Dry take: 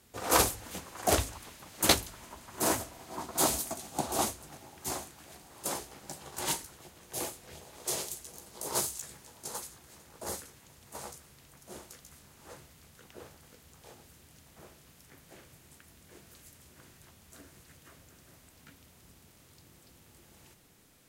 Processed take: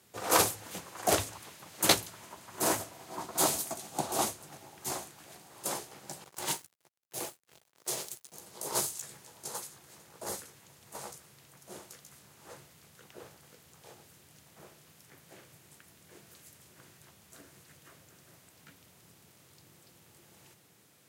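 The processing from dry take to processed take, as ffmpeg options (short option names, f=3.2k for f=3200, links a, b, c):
-filter_complex "[0:a]asettb=1/sr,asplit=3[a][b][c];[a]atrim=end=6.244[d];[b]atrim=start=6.24:end=8.32,asetpts=PTS-STARTPTS,afade=t=in:d=0.004:c=qsin,afade=t=out:st=2.076:d=0.004:c=qsin,aeval=exprs='sgn(val(0))*max(abs(val(0))-0.00531,0)':c=same[e];[c]atrim=start=8.316[f];[d][e]acrossfade=d=0.004:c1=hsin:c2=qsin[g];[g][f]acrossfade=d=0.004:c1=qsin:c2=hsin,highpass=f=100:w=0.5412,highpass=f=100:w=1.3066,equalizer=f=250:t=o:w=0.31:g=-6"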